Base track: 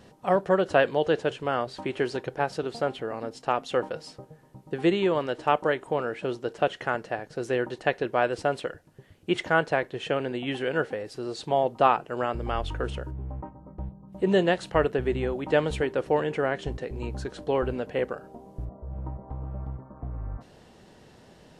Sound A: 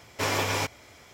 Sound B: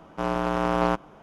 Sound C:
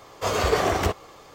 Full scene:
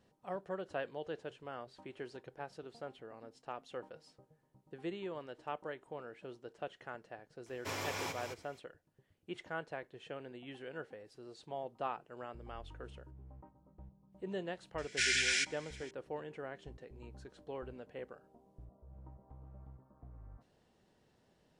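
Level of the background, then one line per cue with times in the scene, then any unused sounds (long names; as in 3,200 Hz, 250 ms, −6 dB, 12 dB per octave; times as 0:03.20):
base track −18.5 dB
0:07.46: mix in A −13 dB + single-tap delay 215 ms −6.5 dB
0:14.78: mix in A −0.5 dB + linear-phase brick-wall band-pass 1,400–10,000 Hz
not used: B, C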